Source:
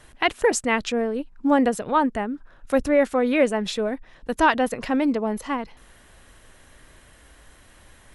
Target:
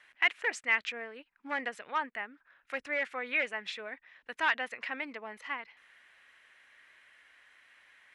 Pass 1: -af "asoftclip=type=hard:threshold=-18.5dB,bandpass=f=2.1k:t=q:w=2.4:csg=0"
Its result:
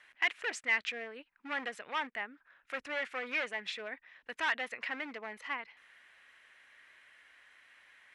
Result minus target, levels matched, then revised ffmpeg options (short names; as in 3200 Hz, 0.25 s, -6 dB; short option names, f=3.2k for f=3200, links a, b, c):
hard clip: distortion +11 dB
-af "asoftclip=type=hard:threshold=-12dB,bandpass=f=2.1k:t=q:w=2.4:csg=0"